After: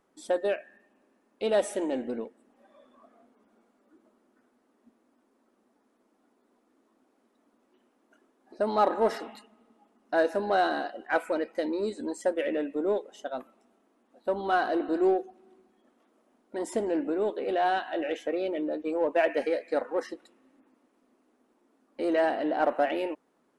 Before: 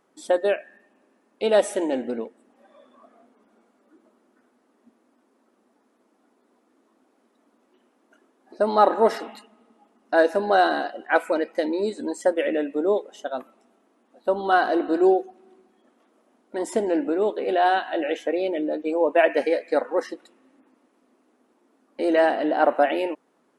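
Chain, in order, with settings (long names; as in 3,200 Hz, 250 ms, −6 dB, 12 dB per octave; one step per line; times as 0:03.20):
low-shelf EQ 83 Hz +11.5 dB
in parallel at −7.5 dB: soft clipping −22 dBFS, distortion −8 dB
on the sum: level −8 dB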